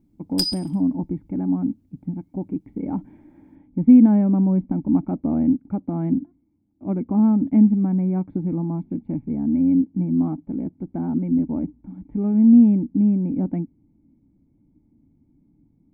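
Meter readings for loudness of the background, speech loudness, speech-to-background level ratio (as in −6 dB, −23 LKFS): −26.0 LKFS, −20.5 LKFS, 5.5 dB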